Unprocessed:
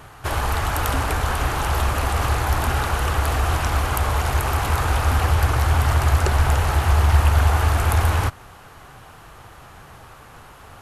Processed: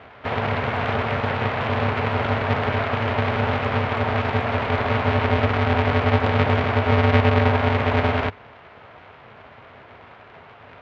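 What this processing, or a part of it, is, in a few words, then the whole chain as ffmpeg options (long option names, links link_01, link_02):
ring modulator pedal into a guitar cabinet: -af "aeval=exprs='val(0)*sgn(sin(2*PI*170*n/s))':channel_layout=same,highpass=88,equalizer=frequency=100:width_type=q:width=4:gain=5,equalizer=frequency=190:width_type=q:width=4:gain=-7,equalizer=frequency=290:width_type=q:width=4:gain=-9,equalizer=frequency=430:width_type=q:width=4:gain=5,equalizer=frequency=710:width_type=q:width=4:gain=5,equalizer=frequency=2200:width_type=q:width=4:gain=4,lowpass=frequency=3400:width=0.5412,lowpass=frequency=3400:width=1.3066,volume=-2dB"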